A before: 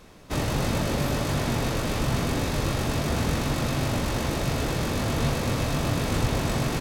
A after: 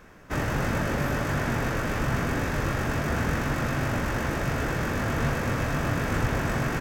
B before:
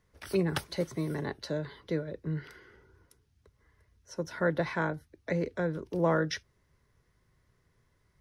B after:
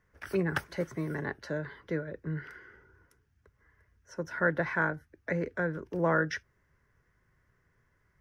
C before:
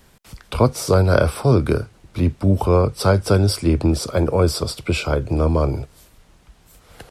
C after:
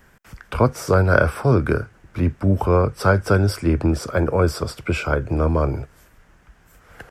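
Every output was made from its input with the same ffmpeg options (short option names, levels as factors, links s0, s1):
-af "equalizer=f=1600:t=o:w=0.67:g=9,equalizer=f=4000:t=o:w=0.67:g=-9,equalizer=f=10000:t=o:w=0.67:g=-7,volume=0.841"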